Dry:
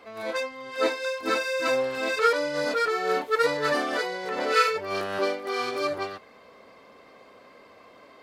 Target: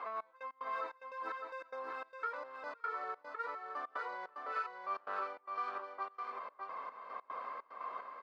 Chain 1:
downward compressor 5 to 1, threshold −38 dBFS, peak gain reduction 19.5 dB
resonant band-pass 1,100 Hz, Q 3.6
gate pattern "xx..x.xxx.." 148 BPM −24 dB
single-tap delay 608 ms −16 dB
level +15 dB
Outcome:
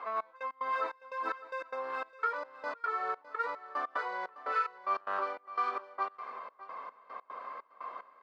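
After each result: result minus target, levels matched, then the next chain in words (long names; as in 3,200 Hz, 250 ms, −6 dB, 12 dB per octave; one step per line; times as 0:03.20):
echo-to-direct −11 dB; downward compressor: peak gain reduction −7 dB
downward compressor 5 to 1, threshold −38 dBFS, peak gain reduction 19.5 dB
resonant band-pass 1,100 Hz, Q 3.6
gate pattern "xx..x.xxx.." 148 BPM −24 dB
single-tap delay 608 ms −5 dB
level +15 dB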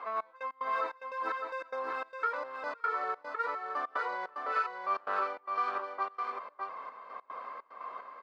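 downward compressor: peak gain reduction −7 dB
downward compressor 5 to 1, threshold −47 dBFS, peak gain reduction 26.5 dB
resonant band-pass 1,100 Hz, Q 3.6
gate pattern "xx..x.xxx.." 148 BPM −24 dB
single-tap delay 608 ms −5 dB
level +15 dB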